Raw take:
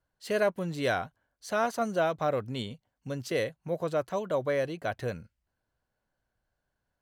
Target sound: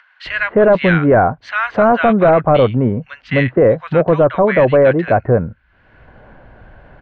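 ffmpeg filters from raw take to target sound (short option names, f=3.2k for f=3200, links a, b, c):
-filter_complex "[0:a]lowpass=f=2.4k:w=0.5412,lowpass=f=2.4k:w=1.3066,acompressor=mode=upward:threshold=-44dB:ratio=2.5,acrossover=split=1400[a][b];[a]adelay=260[c];[c][b]amix=inputs=2:normalize=0,apsyclip=26dB,volume=-5dB"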